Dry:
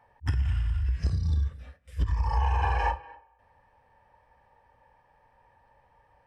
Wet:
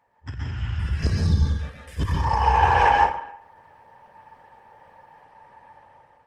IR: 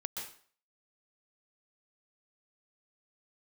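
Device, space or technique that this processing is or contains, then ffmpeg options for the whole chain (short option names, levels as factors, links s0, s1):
far-field microphone of a smart speaker: -filter_complex "[1:a]atrim=start_sample=2205[s0];[0:a][s0]afir=irnorm=-1:irlink=0,highpass=110,dynaudnorm=f=260:g=5:m=5.01,volume=0.841" -ar 48000 -c:a libopus -b:a 16k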